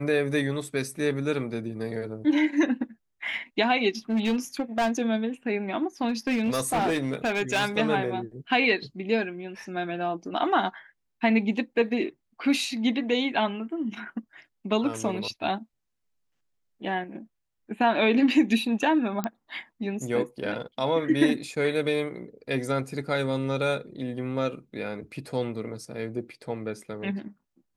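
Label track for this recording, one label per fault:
4.100000	4.910000	clipped -20.5 dBFS
6.080000	7.660000	clipped -21 dBFS
19.240000	19.240000	pop -15 dBFS

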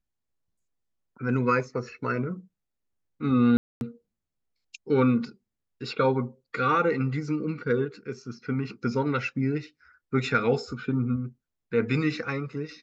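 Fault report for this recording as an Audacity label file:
3.570000	3.810000	dropout 241 ms

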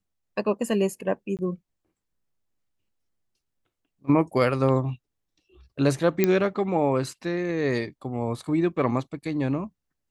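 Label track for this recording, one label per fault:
1.370000	1.390000	dropout 18 ms
6.240000	6.240000	pop -7 dBFS

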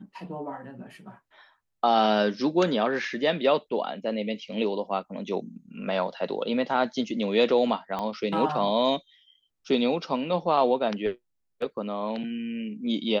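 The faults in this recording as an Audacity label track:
7.990000	7.990000	pop -19 dBFS

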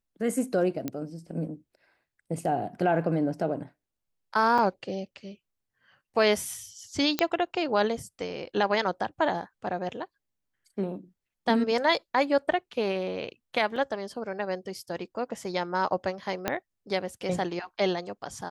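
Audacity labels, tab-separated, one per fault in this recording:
0.880000	0.880000	pop -17 dBFS
4.580000	4.580000	dropout 5 ms
7.190000	7.190000	pop -8 dBFS
13.760000	13.760000	dropout 3.8 ms
16.480000	16.480000	pop -11 dBFS

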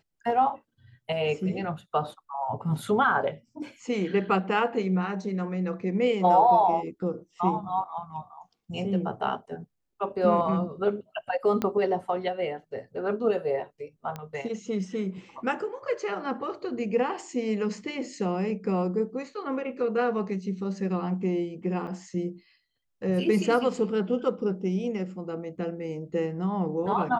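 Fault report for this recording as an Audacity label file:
11.620000	11.620000	pop -14 dBFS
14.160000	14.160000	pop -22 dBFS
21.870000	21.880000	dropout 6.8 ms

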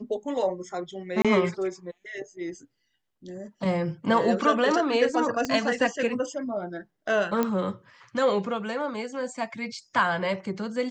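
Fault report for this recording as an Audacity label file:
1.220000	1.250000	dropout 26 ms
5.450000	5.450000	pop -14 dBFS
7.430000	7.430000	pop -12 dBFS

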